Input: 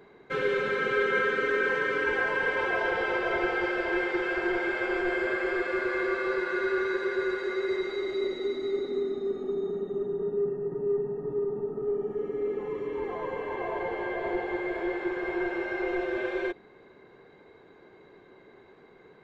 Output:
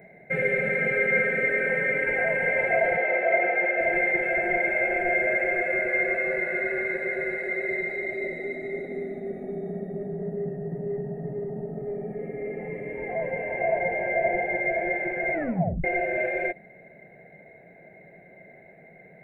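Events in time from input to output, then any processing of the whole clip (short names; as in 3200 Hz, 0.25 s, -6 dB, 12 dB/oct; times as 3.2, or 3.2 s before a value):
2.97–3.81 BPF 290–3700 Hz
15.33 tape stop 0.51 s
whole clip: EQ curve 100 Hz 0 dB, 170 Hz +12 dB, 290 Hz -3 dB, 420 Hz -4 dB, 660 Hz +15 dB, 1100 Hz -21 dB, 2100 Hz +13 dB, 3100 Hz -16 dB, 6100 Hz -21 dB, 8800 Hz +7 dB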